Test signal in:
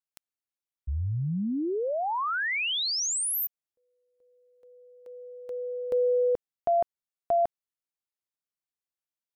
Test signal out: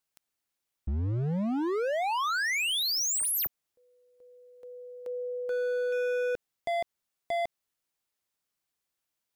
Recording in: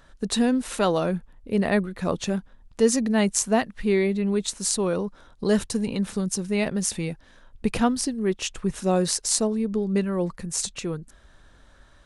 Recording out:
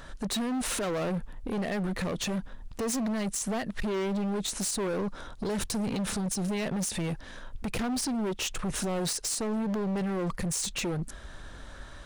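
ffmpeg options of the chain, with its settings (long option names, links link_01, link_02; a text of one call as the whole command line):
ffmpeg -i in.wav -af "acompressor=threshold=-30dB:ratio=5:attack=0.18:release=71:knee=6:detection=rms,asoftclip=type=hard:threshold=-37dB,volume=9dB" out.wav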